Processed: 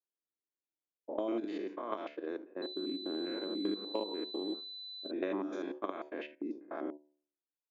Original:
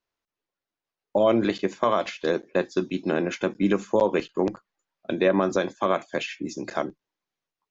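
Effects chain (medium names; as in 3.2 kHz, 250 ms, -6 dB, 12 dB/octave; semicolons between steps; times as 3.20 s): spectrogram pixelated in time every 100 ms; level-controlled noise filter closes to 1.2 kHz, open at -22.5 dBFS; dynamic bell 530 Hz, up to -5 dB, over -34 dBFS, Q 4; level held to a coarse grid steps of 12 dB; de-hum 73.88 Hz, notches 13; gate -43 dBFS, range -8 dB; resonant low shelf 200 Hz -13.5 dB, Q 3; level-controlled noise filter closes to 800 Hz, open at -21.5 dBFS; compression 5:1, threshold -27 dBFS, peak gain reduction 9.5 dB; 2.62–5.11 s: class-D stage that switches slowly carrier 4 kHz; trim -5 dB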